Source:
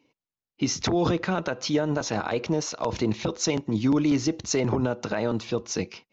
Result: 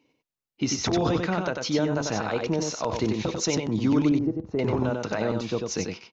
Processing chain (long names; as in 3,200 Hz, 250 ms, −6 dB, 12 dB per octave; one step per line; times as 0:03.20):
0:04.09–0:04.59: Bessel low-pass filter 560 Hz, order 2
on a send: single-tap delay 94 ms −4.5 dB
on the sum: level −1 dB